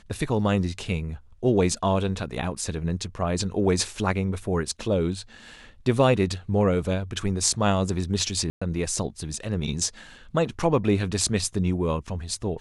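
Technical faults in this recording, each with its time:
8.5–8.62 gap 0.115 s

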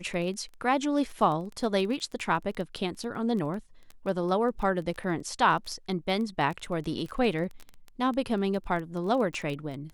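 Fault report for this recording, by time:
crackle 12/s -33 dBFS

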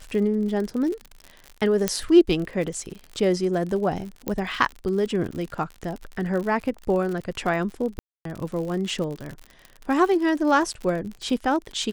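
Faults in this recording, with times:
crackle 59/s -30 dBFS
1.88 pop -5 dBFS
4.28 pop -13 dBFS
7.99–8.25 gap 0.263 s

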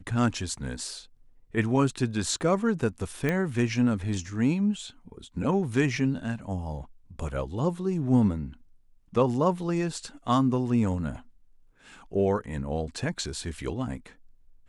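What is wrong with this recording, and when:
3.29 pop -14 dBFS

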